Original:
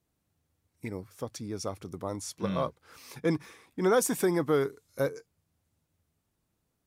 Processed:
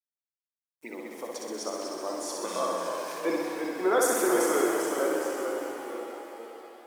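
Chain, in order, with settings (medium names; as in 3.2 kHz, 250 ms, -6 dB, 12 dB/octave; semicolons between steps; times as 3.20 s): high-pass 320 Hz 24 dB/octave; band-stop 460 Hz, Q 12; harmony voices +3 st -17 dB; spectral gate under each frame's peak -30 dB strong; word length cut 10-bit, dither none; on a send: flutter echo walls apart 10.8 m, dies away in 1.1 s; on the sum: ever faster or slower copies 146 ms, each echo -1 st, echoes 3, each echo -6 dB; pitch-shifted reverb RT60 3.5 s, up +7 st, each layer -8 dB, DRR 5 dB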